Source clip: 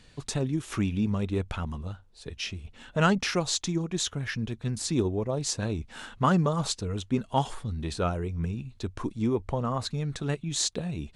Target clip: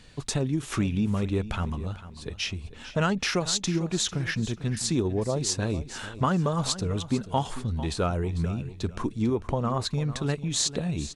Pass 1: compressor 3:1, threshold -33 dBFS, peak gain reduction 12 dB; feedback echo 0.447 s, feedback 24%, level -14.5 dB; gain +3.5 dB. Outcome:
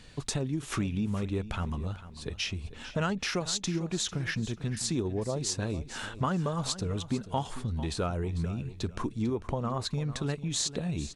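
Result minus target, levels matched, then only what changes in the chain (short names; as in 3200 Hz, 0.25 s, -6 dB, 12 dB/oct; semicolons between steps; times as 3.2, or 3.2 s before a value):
compressor: peak gain reduction +5 dB
change: compressor 3:1, threshold -25.5 dBFS, peak gain reduction 7 dB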